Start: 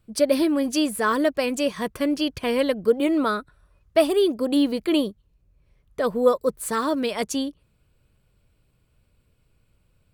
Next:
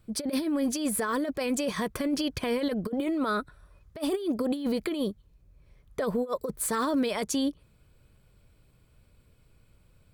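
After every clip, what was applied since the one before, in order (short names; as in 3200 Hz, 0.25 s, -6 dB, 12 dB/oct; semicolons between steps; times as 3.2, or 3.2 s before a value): negative-ratio compressor -24 dBFS, ratio -0.5; notch 2800 Hz, Q 14; limiter -20 dBFS, peak gain reduction 9.5 dB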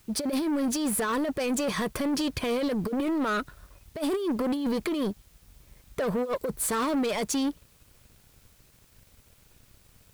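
sample leveller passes 2; in parallel at -9 dB: requantised 8-bit, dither triangular; on the sum: gain -5 dB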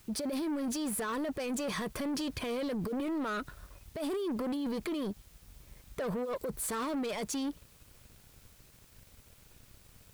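limiter -30 dBFS, peak gain reduction 8 dB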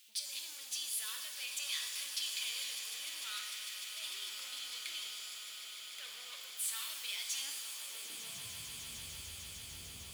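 high-pass sweep 3100 Hz -> 63 Hz, 7.3–8.67; swelling echo 0.15 s, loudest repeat 8, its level -14 dB; shimmer reverb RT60 1.3 s, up +7 st, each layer -2 dB, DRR 3.5 dB; gain -2.5 dB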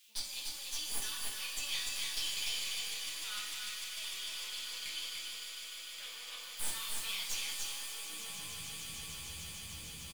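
tracing distortion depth 0.021 ms; echo 0.294 s -3.5 dB; reverb, pre-delay 5 ms, DRR -2.5 dB; gain -3.5 dB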